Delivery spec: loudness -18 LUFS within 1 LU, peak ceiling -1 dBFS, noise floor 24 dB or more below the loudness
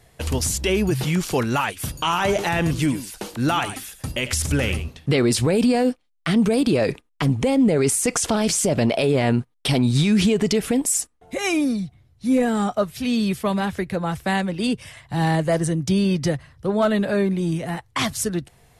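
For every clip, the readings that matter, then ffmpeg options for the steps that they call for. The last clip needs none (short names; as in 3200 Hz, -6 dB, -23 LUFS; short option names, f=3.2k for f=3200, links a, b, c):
loudness -21.5 LUFS; peak -9.5 dBFS; loudness target -18.0 LUFS
-> -af "volume=3.5dB"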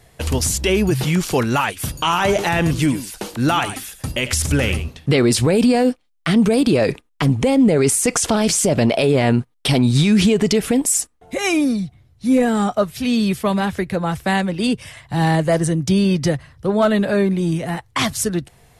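loudness -18.0 LUFS; peak -6.0 dBFS; noise floor -55 dBFS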